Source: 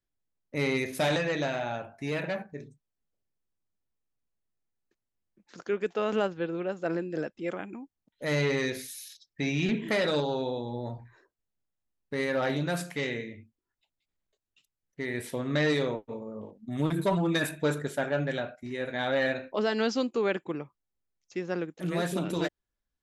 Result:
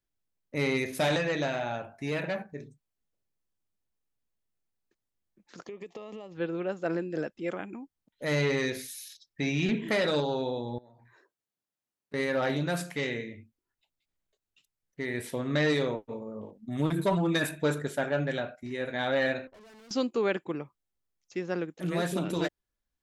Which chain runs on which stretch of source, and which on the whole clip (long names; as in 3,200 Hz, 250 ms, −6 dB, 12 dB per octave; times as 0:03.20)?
0:05.64–0:06.35: downward compressor 20 to 1, threshold −37 dBFS + Butterworth band-reject 1,500 Hz, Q 2.8
0:10.78–0:12.14: high-pass filter 99 Hz + low-shelf EQ 130 Hz −11 dB + downward compressor, threshold −54 dBFS
0:19.47–0:19.91: low-pass that shuts in the quiet parts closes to 700 Hz, open at −23.5 dBFS + downward compressor 4 to 1, threshold −33 dBFS + tube saturation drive 52 dB, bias 0.7
whole clip: no processing